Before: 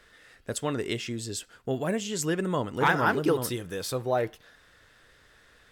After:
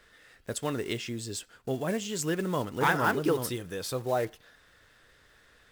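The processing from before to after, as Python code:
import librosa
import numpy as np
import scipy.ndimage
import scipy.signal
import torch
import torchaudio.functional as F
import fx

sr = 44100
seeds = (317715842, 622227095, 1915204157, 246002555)

y = fx.block_float(x, sr, bits=5)
y = y * librosa.db_to_amplitude(-2.0)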